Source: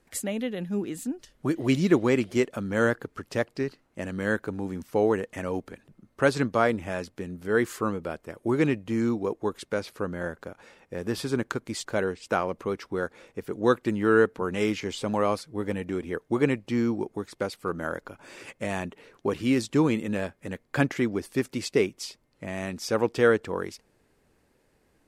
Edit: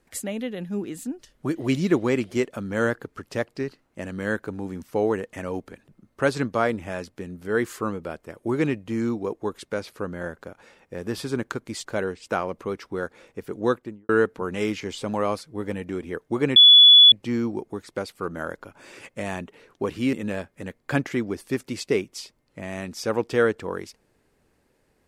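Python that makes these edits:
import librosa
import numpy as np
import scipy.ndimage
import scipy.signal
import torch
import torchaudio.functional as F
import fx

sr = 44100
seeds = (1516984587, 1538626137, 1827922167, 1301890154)

y = fx.studio_fade_out(x, sr, start_s=13.61, length_s=0.48)
y = fx.edit(y, sr, fx.insert_tone(at_s=16.56, length_s=0.56, hz=3420.0, db=-7.5),
    fx.cut(start_s=19.57, length_s=0.41), tone=tone)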